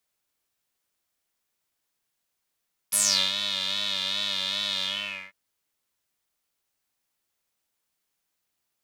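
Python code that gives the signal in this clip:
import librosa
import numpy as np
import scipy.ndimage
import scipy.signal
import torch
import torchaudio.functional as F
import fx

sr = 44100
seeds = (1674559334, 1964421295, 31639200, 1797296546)

y = fx.sub_patch_vibrato(sr, seeds[0], note=55, wave='square', wave2='saw', interval_st=19, detune_cents=26, level2_db=-9, sub_db=-2.0, noise_db=-15.0, kind='bandpass', cutoff_hz=2000.0, q=7.0, env_oct=2.5, env_decay_s=0.27, env_sustain_pct=35, attack_ms=16.0, decay_s=0.38, sustain_db=-12.0, release_s=0.49, note_s=1.91, lfo_hz=2.5, vibrato_cents=67)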